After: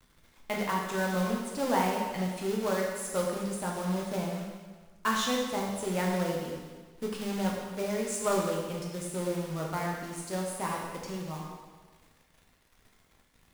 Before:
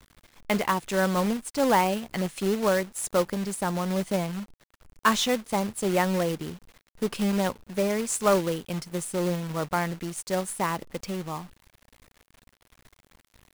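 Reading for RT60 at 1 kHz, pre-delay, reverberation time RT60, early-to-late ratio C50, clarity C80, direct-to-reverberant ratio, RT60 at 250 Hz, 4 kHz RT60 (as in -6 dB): 1.4 s, 4 ms, 1.4 s, 1.5 dB, 3.5 dB, -2.0 dB, 1.5 s, 1.3 s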